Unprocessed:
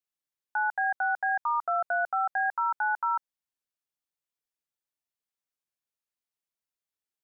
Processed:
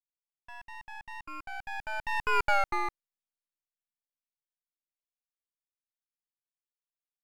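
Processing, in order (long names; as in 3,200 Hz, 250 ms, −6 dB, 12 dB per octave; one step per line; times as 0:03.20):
source passing by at 0:02.46, 42 m/s, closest 7.3 metres
half-wave rectification
level +7 dB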